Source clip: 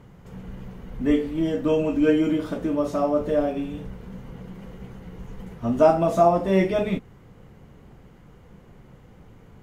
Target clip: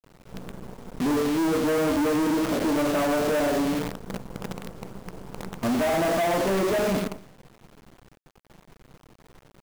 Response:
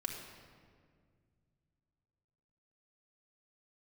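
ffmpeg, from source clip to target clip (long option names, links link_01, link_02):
-filter_complex "[0:a]aemphasis=mode=production:type=75fm,acrossover=split=170|1600[link_01][link_02][link_03];[link_01]acompressor=threshold=-46dB:ratio=5[link_04];[link_03]lowpass=frequency=2100:width=0.5412,lowpass=frequency=2100:width=1.3066[link_05];[link_04][link_02][link_05]amix=inputs=3:normalize=0,alimiter=limit=-17.5dB:level=0:latency=1,aecho=1:1:93|186|279|372|465:0.355|0.153|0.0656|0.0282|0.0121,agate=range=-33dB:threshold=-40dB:ratio=3:detection=peak,equalizer=frequency=76:width_type=o:width=0.7:gain=-8,aresample=8000,asoftclip=type=tanh:threshold=-30dB,aresample=44100,acrusher=bits=7:dc=4:mix=0:aa=0.000001,volume=8.5dB"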